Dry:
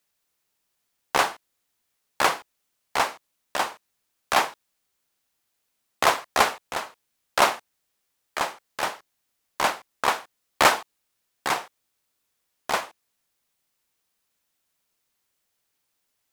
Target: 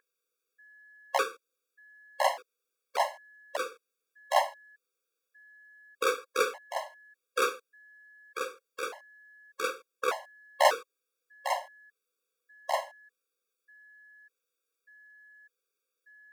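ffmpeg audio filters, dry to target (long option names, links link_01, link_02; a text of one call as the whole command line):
ffmpeg -i in.wav -af "aeval=exprs='val(0)+0.00398*sin(2*PI*1700*n/s)':channel_layout=same,highpass=frequency=490:width_type=q:width=3.6,afftfilt=real='re*gt(sin(2*PI*0.84*pts/sr)*(1-2*mod(floor(b*sr/1024/550),2)),0)':imag='im*gt(sin(2*PI*0.84*pts/sr)*(1-2*mod(floor(b*sr/1024/550),2)),0)':win_size=1024:overlap=0.75,volume=-6dB" out.wav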